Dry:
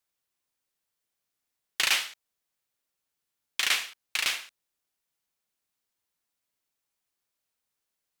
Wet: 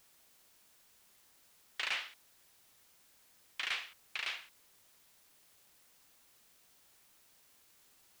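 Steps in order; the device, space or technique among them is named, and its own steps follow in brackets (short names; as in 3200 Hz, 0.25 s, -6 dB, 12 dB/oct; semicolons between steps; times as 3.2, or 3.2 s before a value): tape answering machine (BPF 370–3400 Hz; soft clip -18.5 dBFS, distortion -17 dB; wow and flutter; white noise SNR 18 dB); gain -7.5 dB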